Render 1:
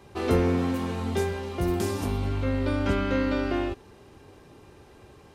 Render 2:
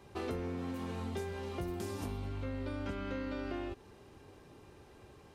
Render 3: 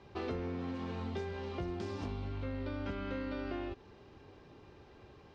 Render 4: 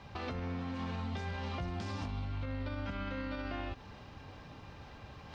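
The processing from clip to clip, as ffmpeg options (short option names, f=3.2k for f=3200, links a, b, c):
-af "acompressor=threshold=-30dB:ratio=6,volume=-5.5dB"
-af "lowpass=f=5.3k:w=0.5412,lowpass=f=5.3k:w=1.3066"
-af "equalizer=f=380:t=o:w=0.58:g=-14.5,alimiter=level_in=13.5dB:limit=-24dB:level=0:latency=1:release=114,volume=-13.5dB,areverse,acompressor=mode=upward:threshold=-53dB:ratio=2.5,areverse,volume=7.5dB"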